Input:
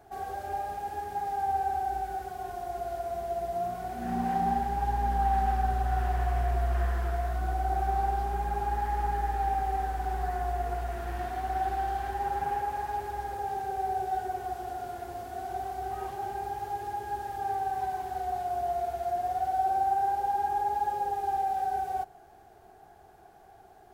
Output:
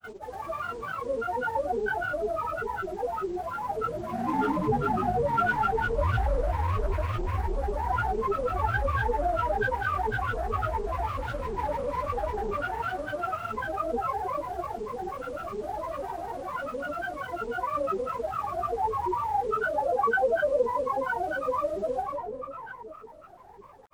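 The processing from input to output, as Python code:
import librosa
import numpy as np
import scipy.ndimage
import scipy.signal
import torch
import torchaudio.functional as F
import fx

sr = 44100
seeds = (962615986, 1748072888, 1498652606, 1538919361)

y = fx.rev_freeverb(x, sr, rt60_s=3.6, hf_ratio=0.35, predelay_ms=65, drr_db=-1.5)
y = fx.granulator(y, sr, seeds[0], grain_ms=100.0, per_s=20.0, spray_ms=100.0, spread_st=12)
y = y * 10.0 ** (-2.0 / 20.0)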